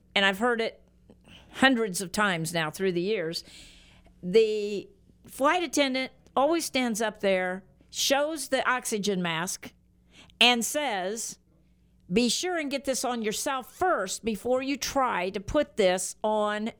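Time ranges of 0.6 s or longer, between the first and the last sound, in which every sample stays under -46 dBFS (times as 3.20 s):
11.34–12.09 s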